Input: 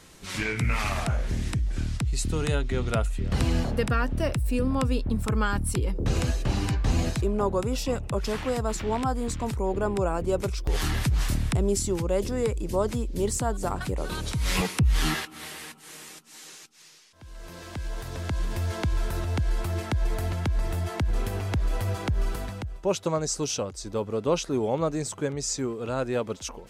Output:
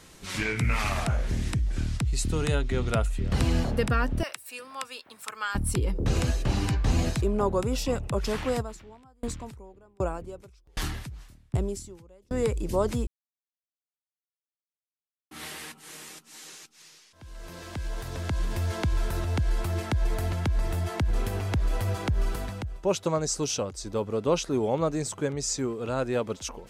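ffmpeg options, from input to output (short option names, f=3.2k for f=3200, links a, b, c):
-filter_complex "[0:a]asettb=1/sr,asplit=3[a][b][c];[a]atrim=end=4.234[d];[b]atrim=start=4.23:end=5.55,asetpts=PTS-STARTPTS,afade=t=in:d=0.004:c=qsin,afade=t=out:st=1.316:d=0.004:c=qsin,highpass=1.2k[e];[c]atrim=start=5.546[f];[d][e]acrossfade=d=0.004:c1=hsin:c2=qsin[g];[g][f]acrossfade=d=0.004:c1=qsin:c2=hsin,asplit=3[h][i][j];[h]afade=t=out:st=8.61:d=0.02[k];[i]aeval=exprs='val(0)*pow(10,-37*if(lt(mod(1.3*n/s,1),2*abs(1.3)/1000),1-mod(1.3*n/s,1)/(2*abs(1.3)/1000),(mod(1.3*n/s,1)-2*abs(1.3)/1000)/(1-2*abs(1.3)/1000))/20)':c=same,afade=t=in:st=8.61:d=0.02,afade=t=out:st=12.32:d=0.02[l];[j]afade=t=in:st=12.32:d=0.02[m];[k][l][m]amix=inputs=3:normalize=0,asplit=3[n][o][p];[n]atrim=end=13.07,asetpts=PTS-STARTPTS,afade=t=out:st=13.066:d=0.004:c=hsin[q];[o]atrim=start=13.07:end=15.31,asetpts=PTS-STARTPTS,volume=0[r];[p]atrim=start=15.31,asetpts=PTS-STARTPTS,afade=t=in:d=0.004:c=hsin[s];[q][r][s]concat=n=3:v=0:a=1"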